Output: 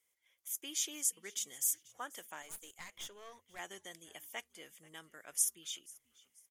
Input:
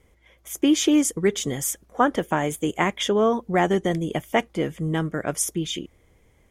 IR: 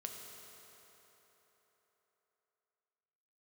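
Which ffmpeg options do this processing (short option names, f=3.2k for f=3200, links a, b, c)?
-filter_complex "[0:a]aderivative,asettb=1/sr,asplit=3[a][b][c];[a]atrim=end=2.424[d];[b]atrim=start=2.42:end=3.59,asetpts=PTS-STARTPTS,afade=t=in:d=0.004:c=qsin,afade=t=out:st=1.166:d=0.004:c=qsin,aeval=exprs='(tanh(50.1*val(0)+0.7)-tanh(0.7))/50.1':c=same[e];[c]atrim=start=3.586[f];[d][e]acrossfade=d=0.004:c1=hsin:c2=qsin[g];[g][f]acrossfade=d=0.004:c1=qsin:c2=hsin,asplit=3[h][i][j];[i]adelay=486,afreqshift=-92,volume=-22.5dB[k];[j]adelay=972,afreqshift=-184,volume=-31.9dB[l];[h][k][l]amix=inputs=3:normalize=0,volume=-7dB"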